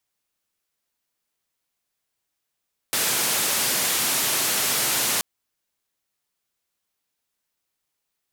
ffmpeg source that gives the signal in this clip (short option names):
-f lavfi -i "anoisesrc=c=white:d=2.28:r=44100:seed=1,highpass=f=120,lowpass=f=14000,volume=-16.1dB"